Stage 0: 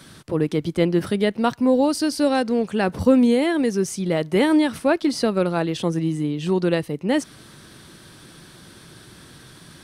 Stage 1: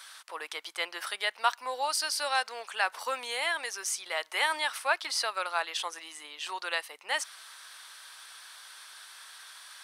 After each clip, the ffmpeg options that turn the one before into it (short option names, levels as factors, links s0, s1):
-af "highpass=f=890:w=0.5412,highpass=f=890:w=1.3066"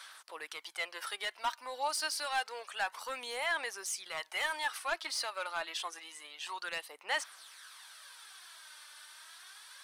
-af "asoftclip=type=tanh:threshold=0.075,aphaser=in_gain=1:out_gain=1:delay=3.4:decay=0.45:speed=0.28:type=sinusoidal,volume=0.562"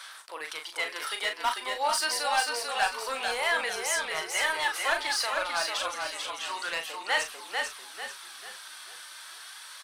-filter_complex "[0:a]asplit=2[s0][s1];[s1]adelay=38,volume=0.473[s2];[s0][s2]amix=inputs=2:normalize=0,asplit=2[s3][s4];[s4]asplit=5[s5][s6][s7][s8][s9];[s5]adelay=444,afreqshift=-31,volume=0.631[s10];[s6]adelay=888,afreqshift=-62,volume=0.245[s11];[s7]adelay=1332,afreqshift=-93,volume=0.0955[s12];[s8]adelay=1776,afreqshift=-124,volume=0.0376[s13];[s9]adelay=2220,afreqshift=-155,volume=0.0146[s14];[s10][s11][s12][s13][s14]amix=inputs=5:normalize=0[s15];[s3][s15]amix=inputs=2:normalize=0,volume=1.88"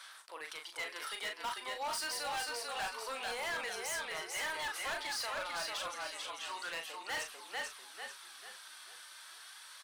-af "asoftclip=type=hard:threshold=0.0447,volume=0.422"